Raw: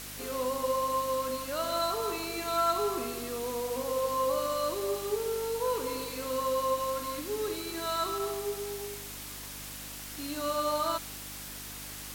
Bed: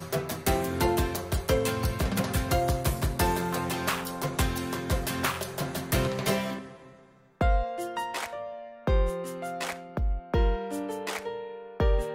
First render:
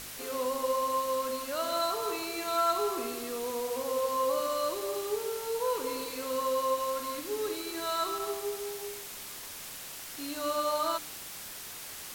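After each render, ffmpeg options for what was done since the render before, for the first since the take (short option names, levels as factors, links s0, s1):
-af "bandreject=f=50:t=h:w=4,bandreject=f=100:t=h:w=4,bandreject=f=150:t=h:w=4,bandreject=f=200:t=h:w=4,bandreject=f=250:t=h:w=4,bandreject=f=300:t=h:w=4,bandreject=f=350:t=h:w=4,bandreject=f=400:t=h:w=4,bandreject=f=450:t=h:w=4"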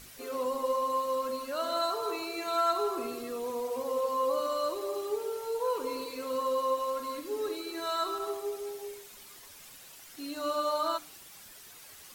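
-af "afftdn=nr=10:nf=-43"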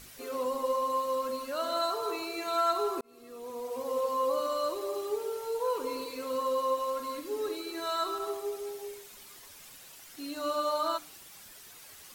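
-filter_complex "[0:a]asplit=2[s0][s1];[s0]atrim=end=3.01,asetpts=PTS-STARTPTS,afade=t=out:st=3.006:d=0.004:c=hsin[s2];[s1]atrim=start=3.01,asetpts=PTS-STARTPTS,afade=t=in:d=0.96[s3];[s2][s3]concat=n=2:v=0:a=1"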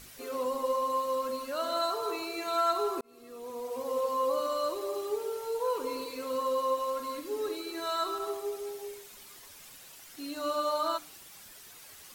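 -af anull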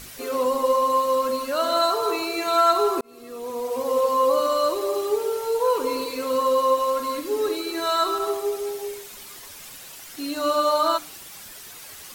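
-af "volume=2.99"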